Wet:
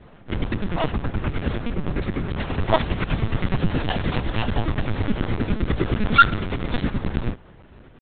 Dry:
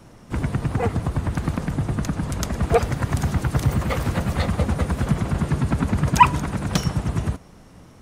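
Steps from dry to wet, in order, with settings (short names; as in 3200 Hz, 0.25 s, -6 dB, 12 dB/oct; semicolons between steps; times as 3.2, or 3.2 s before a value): dynamic EQ 2800 Hz, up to +7 dB, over -47 dBFS, Q 1.8; pitch shift +6 st; LPC vocoder at 8 kHz pitch kept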